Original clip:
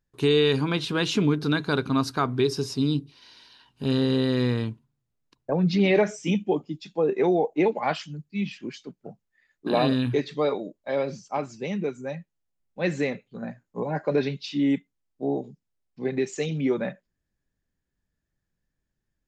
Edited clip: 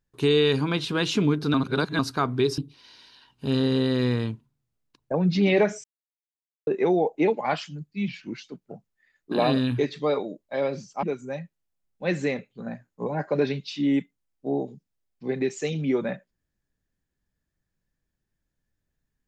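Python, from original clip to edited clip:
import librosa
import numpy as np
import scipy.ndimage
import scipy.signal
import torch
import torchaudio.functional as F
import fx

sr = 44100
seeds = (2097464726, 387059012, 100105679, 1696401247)

y = fx.edit(x, sr, fx.reverse_span(start_s=1.54, length_s=0.45),
    fx.cut(start_s=2.58, length_s=0.38),
    fx.silence(start_s=6.22, length_s=0.83),
    fx.speed_span(start_s=8.46, length_s=0.33, speed=0.92),
    fx.cut(start_s=11.38, length_s=0.41), tone=tone)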